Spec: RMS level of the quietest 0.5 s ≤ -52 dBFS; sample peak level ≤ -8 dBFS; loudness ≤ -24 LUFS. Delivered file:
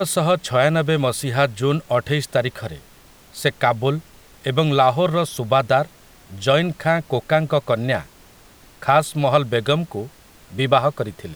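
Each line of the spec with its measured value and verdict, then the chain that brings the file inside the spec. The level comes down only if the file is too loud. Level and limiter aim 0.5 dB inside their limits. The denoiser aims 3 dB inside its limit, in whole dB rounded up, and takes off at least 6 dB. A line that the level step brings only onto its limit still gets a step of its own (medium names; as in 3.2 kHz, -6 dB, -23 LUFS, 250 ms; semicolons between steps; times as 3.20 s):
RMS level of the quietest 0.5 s -48 dBFS: fail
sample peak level -2.5 dBFS: fail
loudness -20.0 LUFS: fail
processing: trim -4.5 dB; peak limiter -8.5 dBFS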